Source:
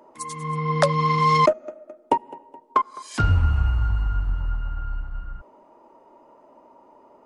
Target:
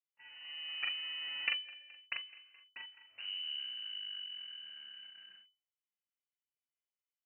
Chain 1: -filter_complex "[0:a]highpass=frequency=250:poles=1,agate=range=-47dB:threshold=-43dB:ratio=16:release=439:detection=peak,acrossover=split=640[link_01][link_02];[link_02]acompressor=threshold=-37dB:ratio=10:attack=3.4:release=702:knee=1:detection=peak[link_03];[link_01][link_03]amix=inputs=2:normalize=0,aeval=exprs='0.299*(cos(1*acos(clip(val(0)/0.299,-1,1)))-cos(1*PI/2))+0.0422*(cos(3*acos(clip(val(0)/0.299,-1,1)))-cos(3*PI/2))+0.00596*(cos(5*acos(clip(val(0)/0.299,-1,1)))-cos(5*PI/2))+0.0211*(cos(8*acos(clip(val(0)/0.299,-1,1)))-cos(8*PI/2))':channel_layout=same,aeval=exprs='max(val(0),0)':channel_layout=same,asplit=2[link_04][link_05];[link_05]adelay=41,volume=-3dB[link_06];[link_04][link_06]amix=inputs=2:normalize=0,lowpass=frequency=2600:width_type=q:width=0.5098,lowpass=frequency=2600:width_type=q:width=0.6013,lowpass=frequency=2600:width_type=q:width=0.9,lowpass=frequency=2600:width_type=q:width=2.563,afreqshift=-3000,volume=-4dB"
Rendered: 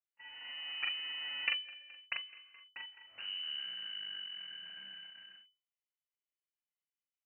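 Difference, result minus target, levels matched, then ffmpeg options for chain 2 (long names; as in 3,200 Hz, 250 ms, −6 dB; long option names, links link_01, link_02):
downward compressor: peak gain reduction −10.5 dB
-filter_complex "[0:a]highpass=frequency=250:poles=1,agate=range=-47dB:threshold=-43dB:ratio=16:release=439:detection=peak,acrossover=split=640[link_01][link_02];[link_02]acompressor=threshold=-48.5dB:ratio=10:attack=3.4:release=702:knee=1:detection=peak[link_03];[link_01][link_03]amix=inputs=2:normalize=0,aeval=exprs='0.299*(cos(1*acos(clip(val(0)/0.299,-1,1)))-cos(1*PI/2))+0.0422*(cos(3*acos(clip(val(0)/0.299,-1,1)))-cos(3*PI/2))+0.00596*(cos(5*acos(clip(val(0)/0.299,-1,1)))-cos(5*PI/2))+0.0211*(cos(8*acos(clip(val(0)/0.299,-1,1)))-cos(8*PI/2))':channel_layout=same,aeval=exprs='max(val(0),0)':channel_layout=same,asplit=2[link_04][link_05];[link_05]adelay=41,volume=-3dB[link_06];[link_04][link_06]amix=inputs=2:normalize=0,lowpass=frequency=2600:width_type=q:width=0.5098,lowpass=frequency=2600:width_type=q:width=0.6013,lowpass=frequency=2600:width_type=q:width=0.9,lowpass=frequency=2600:width_type=q:width=2.563,afreqshift=-3000,volume=-4dB"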